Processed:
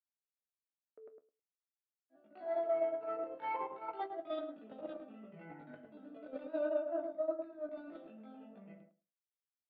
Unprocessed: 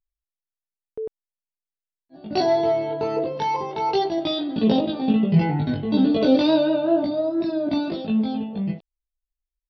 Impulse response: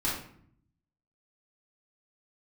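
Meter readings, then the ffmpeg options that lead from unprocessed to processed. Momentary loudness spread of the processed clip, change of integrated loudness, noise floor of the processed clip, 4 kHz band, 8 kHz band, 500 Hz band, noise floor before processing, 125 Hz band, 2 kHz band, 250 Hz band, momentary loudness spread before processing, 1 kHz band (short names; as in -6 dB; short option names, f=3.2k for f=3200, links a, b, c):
19 LU, -17.5 dB, under -85 dBFS, -32.0 dB, n/a, -15.0 dB, under -85 dBFS, -37.0 dB, -16.5 dB, -28.0 dB, 10 LU, -16.5 dB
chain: -filter_complex "[0:a]highpass=270,equalizer=f=290:t=q:w=4:g=3,equalizer=f=420:t=q:w=4:g=-4,equalizer=f=620:t=q:w=4:g=7,equalizer=f=870:t=q:w=4:g=-7,equalizer=f=1.3k:t=q:w=4:g=10,lowpass=f=2.3k:w=0.5412,lowpass=f=2.3k:w=1.3066,bandreject=f=1.1k:w=25,areverse,acompressor=threshold=-31dB:ratio=6,areverse,flanger=delay=3.4:depth=9.5:regen=-66:speed=0.45:shape=sinusoidal,lowshelf=f=500:g=-9,agate=range=-16dB:threshold=-39dB:ratio=16:detection=peak,asplit=2[a][b];[b]adelay=106,lowpass=f=880:p=1,volume=-3.5dB,asplit=2[c][d];[d]adelay=106,lowpass=f=880:p=1,volume=0.15,asplit=2[e][f];[f]adelay=106,lowpass=f=880:p=1,volume=0.15[g];[a][c][e][g]amix=inputs=4:normalize=0,volume=5dB"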